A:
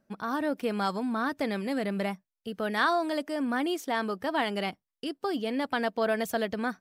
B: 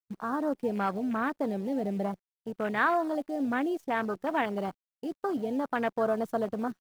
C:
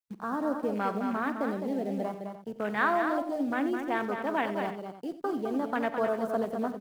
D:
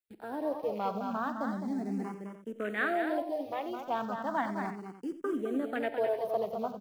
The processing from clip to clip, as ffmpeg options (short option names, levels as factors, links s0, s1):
-af "acrusher=bits=7:dc=4:mix=0:aa=0.000001,afwtdn=0.0282"
-filter_complex "[0:a]acrossover=split=140|2100[s0][s1][s2];[s0]acompressor=threshold=0.00126:ratio=6[s3];[s3][s1][s2]amix=inputs=3:normalize=0,aecho=1:1:48|90|210|298:0.15|0.2|0.473|0.188,volume=0.891"
-filter_complex "[0:a]asplit=2[s0][s1];[s1]afreqshift=0.35[s2];[s0][s2]amix=inputs=2:normalize=1"